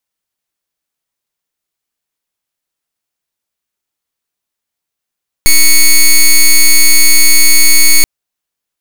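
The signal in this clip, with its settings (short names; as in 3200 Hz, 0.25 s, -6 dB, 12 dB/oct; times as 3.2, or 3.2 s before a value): pulse 2220 Hz, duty 8% -4 dBFS 2.58 s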